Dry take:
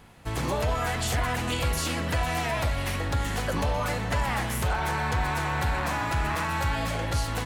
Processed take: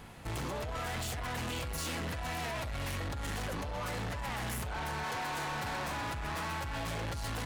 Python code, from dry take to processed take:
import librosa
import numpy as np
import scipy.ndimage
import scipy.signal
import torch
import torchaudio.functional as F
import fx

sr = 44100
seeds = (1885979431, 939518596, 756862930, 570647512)

y = fx.highpass(x, sr, hz=fx.line((5.03, 270.0), (5.86, 110.0)), slope=12, at=(5.03, 5.86), fade=0.02)
y = fx.over_compress(y, sr, threshold_db=-30.0, ratio=-1.0)
y = 10.0 ** (-34.5 / 20.0) * np.tanh(y / 10.0 ** (-34.5 / 20.0))